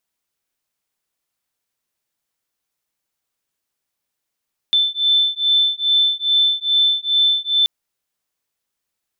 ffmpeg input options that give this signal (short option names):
-f lavfi -i "aevalsrc='0.141*(sin(2*PI*3530*t)+sin(2*PI*3532.4*t))':d=2.93:s=44100"